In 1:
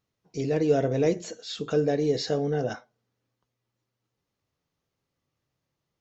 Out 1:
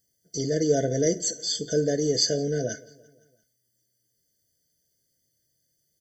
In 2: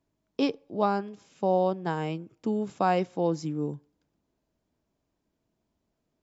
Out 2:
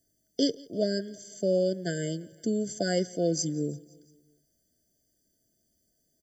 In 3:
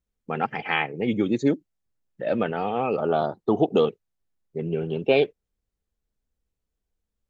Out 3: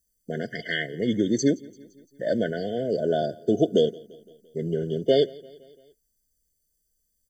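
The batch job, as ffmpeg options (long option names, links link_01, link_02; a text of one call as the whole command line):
ffmpeg -i in.wav -af "aecho=1:1:171|342|513|684:0.0668|0.0394|0.0233|0.0137,aexciter=amount=9.4:drive=4.6:freq=4200,afftfilt=real='re*eq(mod(floor(b*sr/1024/720),2),0)':imag='im*eq(mod(floor(b*sr/1024/720),2),0)':win_size=1024:overlap=0.75" out.wav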